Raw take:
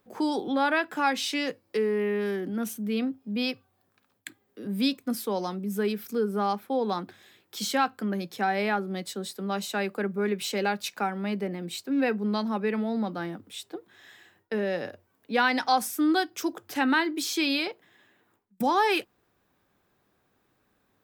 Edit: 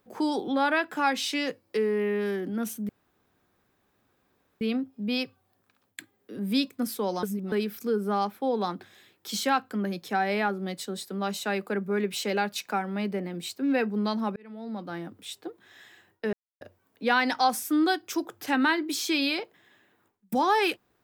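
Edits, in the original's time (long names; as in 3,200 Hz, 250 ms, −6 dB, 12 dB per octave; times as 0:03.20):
0:02.89: splice in room tone 1.72 s
0:05.51–0:05.80: reverse
0:12.64–0:13.44: fade in
0:14.61–0:14.89: silence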